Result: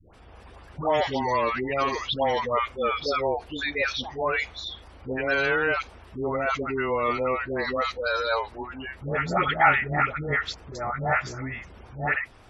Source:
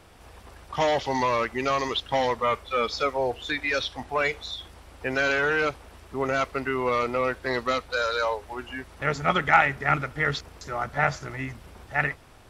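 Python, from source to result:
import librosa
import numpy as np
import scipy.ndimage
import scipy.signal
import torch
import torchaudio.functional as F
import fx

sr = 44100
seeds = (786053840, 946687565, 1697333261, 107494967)

y = fx.dispersion(x, sr, late='highs', ms=141.0, hz=690.0)
y = fx.spec_gate(y, sr, threshold_db=-30, keep='strong')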